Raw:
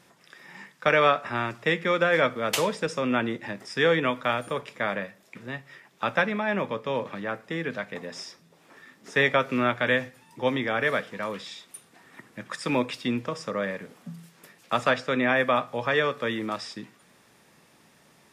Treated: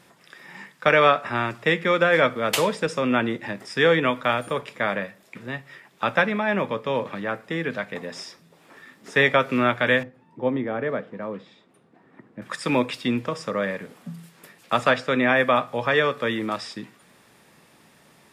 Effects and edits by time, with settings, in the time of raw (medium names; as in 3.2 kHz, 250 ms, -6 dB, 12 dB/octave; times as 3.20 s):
10.03–12.42 s: band-pass filter 260 Hz, Q 0.53
whole clip: peaking EQ 6 kHz -3.5 dB 0.45 oct; trim +3.5 dB